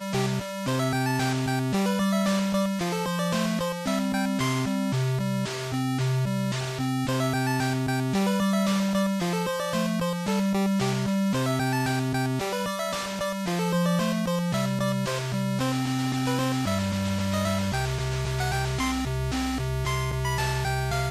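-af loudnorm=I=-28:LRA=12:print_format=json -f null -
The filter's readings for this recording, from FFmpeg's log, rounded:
"input_i" : "-26.5",
"input_tp" : "-14.3",
"input_lra" : "1.7",
"input_thresh" : "-36.5",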